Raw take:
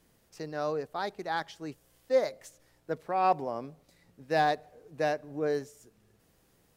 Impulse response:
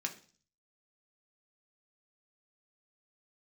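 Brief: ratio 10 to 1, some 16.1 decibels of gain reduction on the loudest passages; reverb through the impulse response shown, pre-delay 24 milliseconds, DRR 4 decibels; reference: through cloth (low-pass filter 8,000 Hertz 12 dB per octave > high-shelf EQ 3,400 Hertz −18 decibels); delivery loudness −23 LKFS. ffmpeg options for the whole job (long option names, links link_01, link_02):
-filter_complex "[0:a]acompressor=threshold=-36dB:ratio=10,asplit=2[link_01][link_02];[1:a]atrim=start_sample=2205,adelay=24[link_03];[link_02][link_03]afir=irnorm=-1:irlink=0,volume=-5.5dB[link_04];[link_01][link_04]amix=inputs=2:normalize=0,lowpass=8000,highshelf=frequency=3400:gain=-18,volume=19.5dB"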